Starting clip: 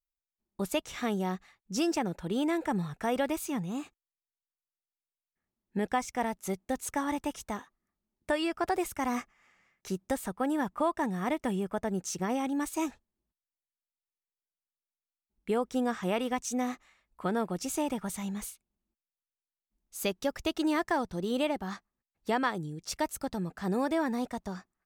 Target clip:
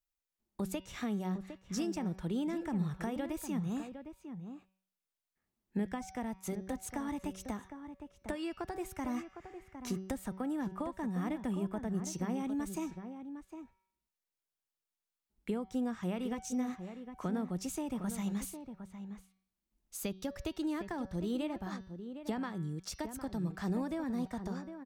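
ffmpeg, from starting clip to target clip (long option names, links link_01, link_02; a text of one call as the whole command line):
ffmpeg -i in.wav -filter_complex "[0:a]bandreject=frequency=189.5:width_type=h:width=4,bandreject=frequency=379:width_type=h:width=4,bandreject=frequency=568.5:width_type=h:width=4,bandreject=frequency=758:width_type=h:width=4,bandreject=frequency=947.5:width_type=h:width=4,bandreject=frequency=1137:width_type=h:width=4,bandreject=frequency=1326.5:width_type=h:width=4,bandreject=frequency=1516:width_type=h:width=4,bandreject=frequency=1705.5:width_type=h:width=4,bandreject=frequency=1895:width_type=h:width=4,bandreject=frequency=2084.5:width_type=h:width=4,bandreject=frequency=2274:width_type=h:width=4,bandreject=frequency=2463.5:width_type=h:width=4,bandreject=frequency=2653:width_type=h:width=4,bandreject=frequency=2842.5:width_type=h:width=4,bandreject=frequency=3032:width_type=h:width=4,bandreject=frequency=3221.5:width_type=h:width=4,bandreject=frequency=3411:width_type=h:width=4,bandreject=frequency=3600.5:width_type=h:width=4,bandreject=frequency=3790:width_type=h:width=4,bandreject=frequency=3979.5:width_type=h:width=4,bandreject=frequency=4169:width_type=h:width=4,bandreject=frequency=4358.5:width_type=h:width=4,bandreject=frequency=4548:width_type=h:width=4,bandreject=frequency=4737.5:width_type=h:width=4,bandreject=frequency=4927:width_type=h:width=4,bandreject=frequency=5116.5:width_type=h:width=4,bandreject=frequency=5306:width_type=h:width=4,bandreject=frequency=5495.5:width_type=h:width=4,bandreject=frequency=5685:width_type=h:width=4,bandreject=frequency=5874.5:width_type=h:width=4,bandreject=frequency=6064:width_type=h:width=4,acrossover=split=230[link_01][link_02];[link_02]acompressor=threshold=-43dB:ratio=4[link_03];[link_01][link_03]amix=inputs=2:normalize=0,asplit=2[link_04][link_05];[link_05]adelay=758,volume=-9dB,highshelf=frequency=4000:gain=-17.1[link_06];[link_04][link_06]amix=inputs=2:normalize=0,volume=1.5dB" out.wav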